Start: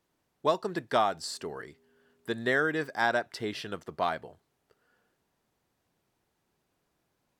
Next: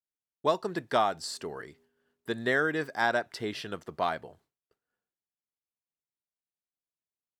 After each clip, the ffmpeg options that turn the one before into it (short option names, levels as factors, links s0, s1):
-af "agate=range=0.0224:threshold=0.00126:ratio=3:detection=peak"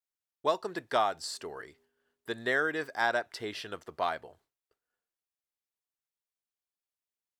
-af "equalizer=f=170:t=o:w=1.6:g=-8.5,volume=0.891"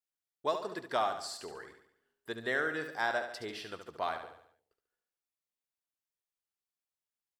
-af "aecho=1:1:71|142|213|284|355|426:0.376|0.184|0.0902|0.0442|0.0217|0.0106,volume=0.631"